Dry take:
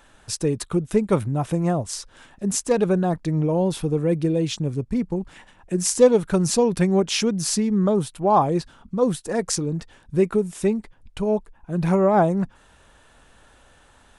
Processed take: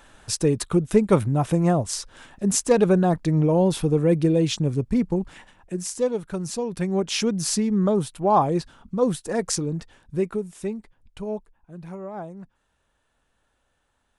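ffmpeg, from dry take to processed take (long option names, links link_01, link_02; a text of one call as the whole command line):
ffmpeg -i in.wav -af "volume=10dB,afade=type=out:start_time=5.21:duration=0.67:silence=0.281838,afade=type=in:start_time=6.67:duration=0.63:silence=0.398107,afade=type=out:start_time=9.6:duration=0.91:silence=0.446684,afade=type=out:start_time=11.32:duration=0.51:silence=0.334965" out.wav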